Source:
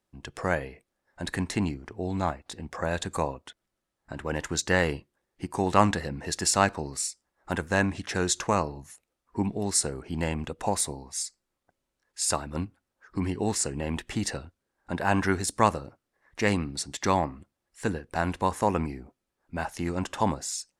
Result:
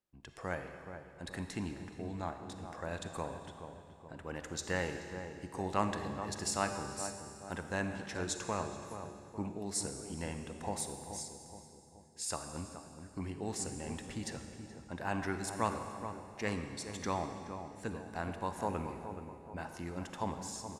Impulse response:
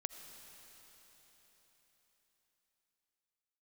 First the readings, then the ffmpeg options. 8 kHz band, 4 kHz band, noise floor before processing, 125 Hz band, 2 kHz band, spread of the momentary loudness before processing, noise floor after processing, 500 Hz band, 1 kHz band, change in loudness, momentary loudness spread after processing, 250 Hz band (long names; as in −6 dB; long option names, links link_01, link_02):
−11.0 dB, −11.0 dB, −83 dBFS, −10.5 dB, −11.0 dB, 14 LU, −55 dBFS, −10.0 dB, −10.5 dB, −11.0 dB, 11 LU, −10.5 dB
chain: -filter_complex "[0:a]asplit=2[link_01][link_02];[link_02]adelay=425,lowpass=frequency=1100:poles=1,volume=-8dB,asplit=2[link_03][link_04];[link_04]adelay=425,lowpass=frequency=1100:poles=1,volume=0.54,asplit=2[link_05][link_06];[link_06]adelay=425,lowpass=frequency=1100:poles=1,volume=0.54,asplit=2[link_07][link_08];[link_08]adelay=425,lowpass=frequency=1100:poles=1,volume=0.54,asplit=2[link_09][link_10];[link_10]adelay=425,lowpass=frequency=1100:poles=1,volume=0.54,asplit=2[link_11][link_12];[link_12]adelay=425,lowpass=frequency=1100:poles=1,volume=0.54[link_13];[link_01][link_03][link_05][link_07][link_09][link_11][link_13]amix=inputs=7:normalize=0[link_14];[1:a]atrim=start_sample=2205,asetrate=83790,aresample=44100[link_15];[link_14][link_15]afir=irnorm=-1:irlink=0,volume=-3.5dB"